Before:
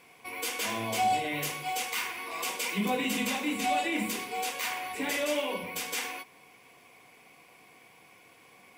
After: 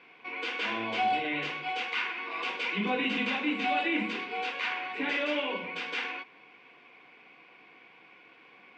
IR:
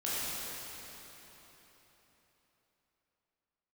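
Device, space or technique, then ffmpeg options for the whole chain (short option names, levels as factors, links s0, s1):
kitchen radio: -af "highpass=190,equalizer=f=320:t=q:w=4:g=3,equalizer=f=640:t=q:w=4:g=-4,equalizer=f=1500:t=q:w=4:g=6,equalizer=f=2600:t=q:w=4:g=4,lowpass=f=3800:w=0.5412,lowpass=f=3800:w=1.3066"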